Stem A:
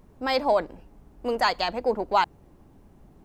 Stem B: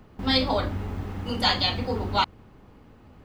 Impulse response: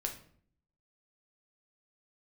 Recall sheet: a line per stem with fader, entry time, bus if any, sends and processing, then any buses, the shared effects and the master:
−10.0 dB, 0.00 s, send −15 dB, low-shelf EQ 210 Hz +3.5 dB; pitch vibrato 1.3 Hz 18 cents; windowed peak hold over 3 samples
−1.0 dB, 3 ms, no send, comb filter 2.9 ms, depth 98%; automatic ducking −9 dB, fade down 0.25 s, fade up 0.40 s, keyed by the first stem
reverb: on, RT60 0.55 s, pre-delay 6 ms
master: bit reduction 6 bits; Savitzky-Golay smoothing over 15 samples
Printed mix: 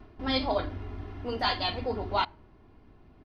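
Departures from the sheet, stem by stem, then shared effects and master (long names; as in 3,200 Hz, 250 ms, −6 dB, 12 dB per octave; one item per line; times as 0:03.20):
stem A: missing windowed peak hold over 3 samples
master: missing bit reduction 6 bits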